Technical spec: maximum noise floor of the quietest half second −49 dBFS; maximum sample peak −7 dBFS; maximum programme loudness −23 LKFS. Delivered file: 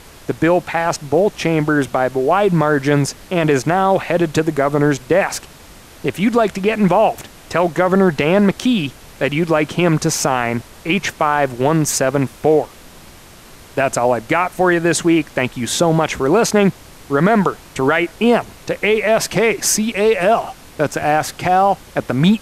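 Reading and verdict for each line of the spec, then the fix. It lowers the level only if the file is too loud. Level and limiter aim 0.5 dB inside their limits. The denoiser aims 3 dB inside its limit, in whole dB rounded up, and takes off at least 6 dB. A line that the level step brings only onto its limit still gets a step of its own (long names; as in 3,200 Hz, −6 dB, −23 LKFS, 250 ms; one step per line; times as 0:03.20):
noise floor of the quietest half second −41 dBFS: out of spec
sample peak −3.0 dBFS: out of spec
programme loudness −16.5 LKFS: out of spec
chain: broadband denoise 6 dB, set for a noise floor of −41 dBFS
level −7 dB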